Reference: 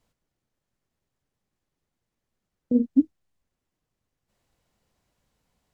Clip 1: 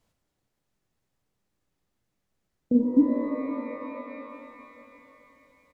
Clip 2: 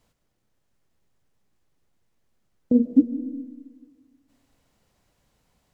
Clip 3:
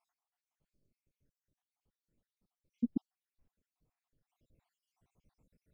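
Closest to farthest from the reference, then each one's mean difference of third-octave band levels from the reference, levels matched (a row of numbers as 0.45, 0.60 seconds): 2, 1, 3; 1.0, 3.0, 6.5 decibels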